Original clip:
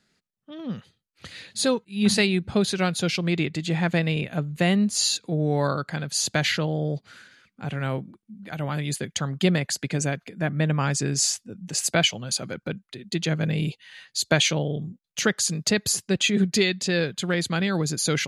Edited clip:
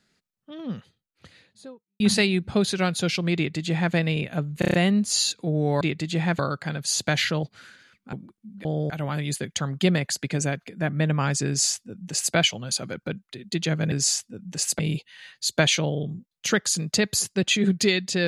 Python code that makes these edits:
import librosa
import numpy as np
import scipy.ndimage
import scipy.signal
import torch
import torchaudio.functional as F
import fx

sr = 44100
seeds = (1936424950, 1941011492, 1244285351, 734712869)

y = fx.studio_fade_out(x, sr, start_s=0.56, length_s=1.44)
y = fx.edit(y, sr, fx.duplicate(start_s=3.36, length_s=0.58, to_s=5.66),
    fx.stutter(start_s=4.59, slice_s=0.03, count=6),
    fx.move(start_s=6.7, length_s=0.25, to_s=8.5),
    fx.cut(start_s=7.65, length_s=0.33),
    fx.duplicate(start_s=11.08, length_s=0.87, to_s=13.52), tone=tone)